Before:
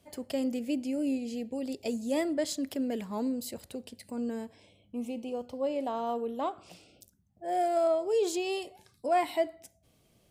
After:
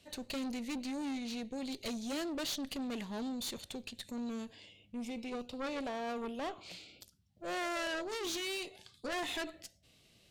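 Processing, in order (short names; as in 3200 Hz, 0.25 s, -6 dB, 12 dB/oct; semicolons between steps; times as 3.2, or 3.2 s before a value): bell 4100 Hz +12.5 dB 1.5 oct; tube stage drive 34 dB, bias 0.45; formant shift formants -2 st; gain -1 dB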